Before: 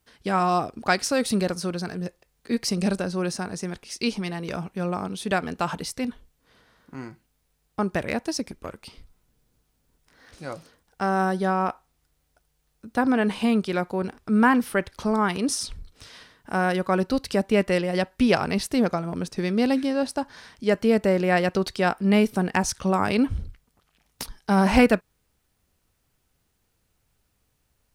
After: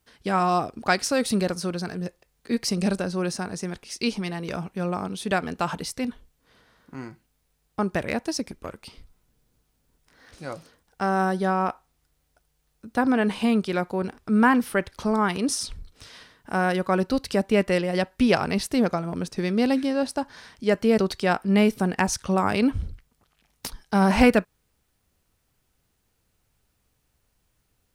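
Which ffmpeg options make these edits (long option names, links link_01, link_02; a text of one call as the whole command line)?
ffmpeg -i in.wav -filter_complex "[0:a]asplit=2[link_01][link_02];[link_01]atrim=end=20.982[link_03];[link_02]atrim=start=21.538[link_04];[link_03][link_04]acrossfade=duration=0.004:curve1=hsin:curve2=hsin" out.wav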